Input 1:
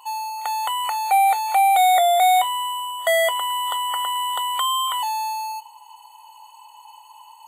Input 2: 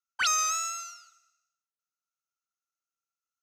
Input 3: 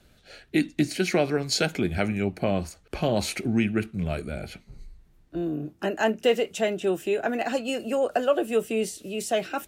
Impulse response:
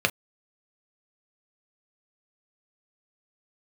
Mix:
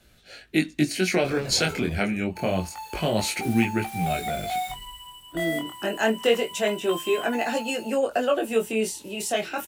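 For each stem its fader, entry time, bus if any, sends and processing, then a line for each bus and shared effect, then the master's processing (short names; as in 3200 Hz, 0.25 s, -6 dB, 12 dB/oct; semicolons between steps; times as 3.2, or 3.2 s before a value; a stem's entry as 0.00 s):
-11.5 dB, 2.30 s, no send, notch 1000 Hz, Q 26; modulation noise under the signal 17 dB
-7.0 dB, 1.05 s, send -6 dB, limiter -27.5 dBFS, peak gain reduction 9.5 dB; decimation with a swept rate 36×, swing 60% 1.1 Hz
+2.5 dB, 0.00 s, no send, high shelf 6200 Hz +6.5 dB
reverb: on, pre-delay 3 ms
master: bell 2200 Hz +3 dB 1.7 oct; chorus 0.27 Hz, delay 17 ms, depth 7.3 ms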